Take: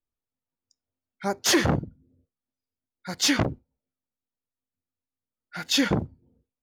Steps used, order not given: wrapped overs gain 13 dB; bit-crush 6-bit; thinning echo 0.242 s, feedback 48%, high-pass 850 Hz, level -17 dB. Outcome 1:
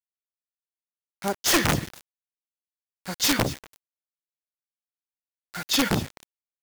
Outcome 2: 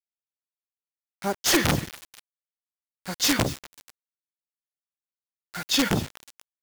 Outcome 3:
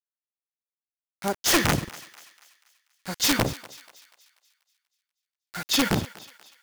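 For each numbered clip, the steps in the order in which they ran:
thinning echo > bit-crush > wrapped overs; wrapped overs > thinning echo > bit-crush; bit-crush > wrapped overs > thinning echo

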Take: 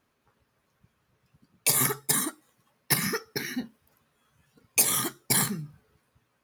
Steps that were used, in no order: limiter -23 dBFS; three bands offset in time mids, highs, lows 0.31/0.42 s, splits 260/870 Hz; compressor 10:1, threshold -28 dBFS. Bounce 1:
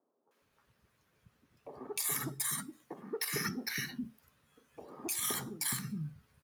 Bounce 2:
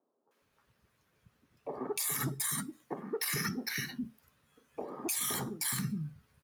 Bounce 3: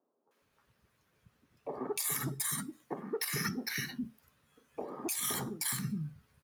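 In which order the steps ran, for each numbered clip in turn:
compressor > three bands offset in time > limiter; three bands offset in time > limiter > compressor; three bands offset in time > compressor > limiter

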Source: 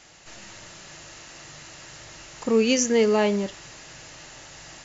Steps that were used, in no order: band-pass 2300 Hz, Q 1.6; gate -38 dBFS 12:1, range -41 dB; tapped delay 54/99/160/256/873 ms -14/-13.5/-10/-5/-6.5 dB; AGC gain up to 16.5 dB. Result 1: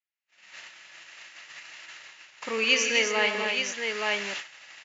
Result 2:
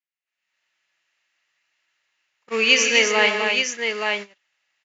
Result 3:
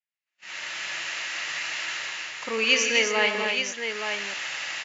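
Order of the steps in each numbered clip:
tapped delay > gate > AGC > band-pass; band-pass > gate > tapped delay > AGC; AGC > band-pass > gate > tapped delay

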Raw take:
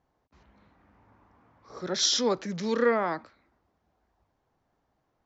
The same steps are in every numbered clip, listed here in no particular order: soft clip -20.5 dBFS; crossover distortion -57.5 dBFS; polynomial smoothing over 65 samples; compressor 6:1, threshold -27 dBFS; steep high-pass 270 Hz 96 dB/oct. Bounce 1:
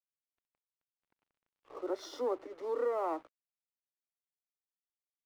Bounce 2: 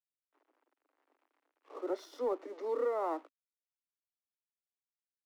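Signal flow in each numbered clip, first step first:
polynomial smoothing > compressor > soft clip > steep high-pass > crossover distortion; compressor > polynomial smoothing > crossover distortion > steep high-pass > soft clip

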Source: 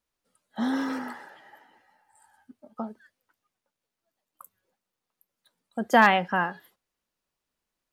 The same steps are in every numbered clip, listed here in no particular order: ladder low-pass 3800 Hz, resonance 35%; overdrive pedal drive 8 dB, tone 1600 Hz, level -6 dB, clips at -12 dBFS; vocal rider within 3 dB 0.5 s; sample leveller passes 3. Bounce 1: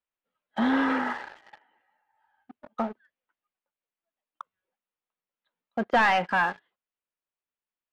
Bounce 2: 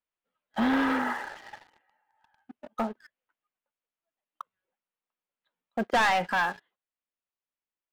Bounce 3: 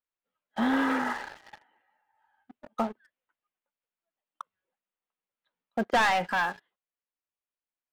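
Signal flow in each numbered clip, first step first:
vocal rider > ladder low-pass > sample leveller > overdrive pedal; overdrive pedal > ladder low-pass > vocal rider > sample leveller; overdrive pedal > ladder low-pass > sample leveller > vocal rider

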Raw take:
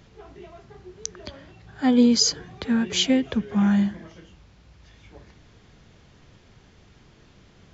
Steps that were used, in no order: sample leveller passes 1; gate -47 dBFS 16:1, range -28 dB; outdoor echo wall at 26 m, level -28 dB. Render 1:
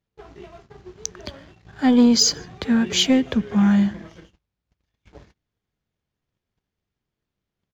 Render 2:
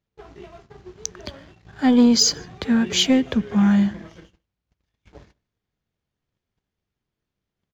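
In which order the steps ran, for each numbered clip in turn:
sample leveller > outdoor echo > gate; sample leveller > gate > outdoor echo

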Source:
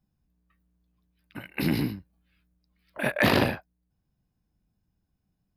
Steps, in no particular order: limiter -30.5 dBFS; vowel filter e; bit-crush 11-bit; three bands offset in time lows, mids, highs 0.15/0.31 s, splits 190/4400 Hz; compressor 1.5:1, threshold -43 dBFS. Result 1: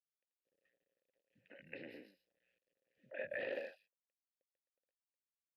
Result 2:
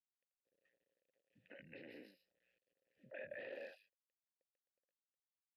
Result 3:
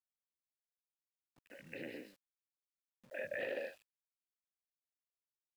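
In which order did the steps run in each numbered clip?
compressor > three bands offset in time > bit-crush > vowel filter > limiter; three bands offset in time > bit-crush > compressor > limiter > vowel filter; vowel filter > compressor > three bands offset in time > limiter > bit-crush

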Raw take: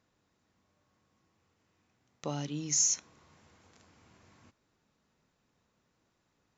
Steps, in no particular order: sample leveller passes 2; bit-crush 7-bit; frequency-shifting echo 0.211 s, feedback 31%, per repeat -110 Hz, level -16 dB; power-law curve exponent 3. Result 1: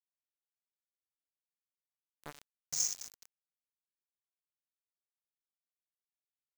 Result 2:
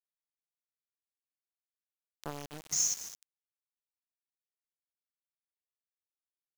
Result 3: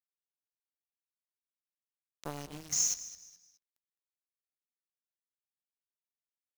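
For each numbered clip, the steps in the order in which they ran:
power-law curve > frequency-shifting echo > sample leveller > bit-crush; sample leveller > power-law curve > frequency-shifting echo > bit-crush; bit-crush > sample leveller > power-law curve > frequency-shifting echo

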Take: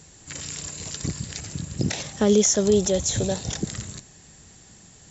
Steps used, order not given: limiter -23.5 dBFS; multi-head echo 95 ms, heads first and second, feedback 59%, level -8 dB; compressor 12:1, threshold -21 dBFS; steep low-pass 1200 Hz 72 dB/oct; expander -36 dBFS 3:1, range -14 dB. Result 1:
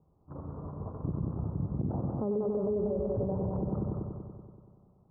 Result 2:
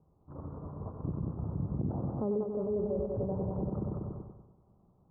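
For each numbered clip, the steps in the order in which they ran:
expander > multi-head echo > compressor > steep low-pass > limiter; multi-head echo > compressor > limiter > expander > steep low-pass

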